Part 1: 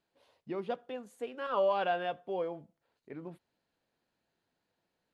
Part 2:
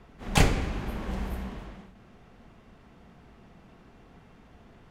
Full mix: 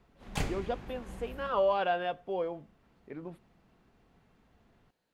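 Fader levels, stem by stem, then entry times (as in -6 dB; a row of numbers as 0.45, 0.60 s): +1.5, -12.0 dB; 0.00, 0.00 s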